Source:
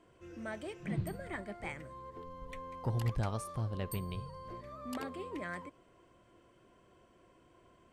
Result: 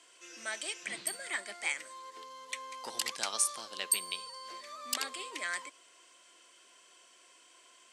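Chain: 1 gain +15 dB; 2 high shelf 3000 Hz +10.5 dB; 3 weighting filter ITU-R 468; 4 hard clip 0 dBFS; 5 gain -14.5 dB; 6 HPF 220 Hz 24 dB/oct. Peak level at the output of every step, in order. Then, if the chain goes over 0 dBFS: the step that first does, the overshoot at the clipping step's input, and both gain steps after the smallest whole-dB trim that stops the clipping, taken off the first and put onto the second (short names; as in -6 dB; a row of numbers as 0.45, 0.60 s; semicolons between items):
-9.5, -3.5, +5.5, 0.0, -14.5, -13.5 dBFS; step 3, 5.5 dB; step 1 +9 dB, step 5 -8.5 dB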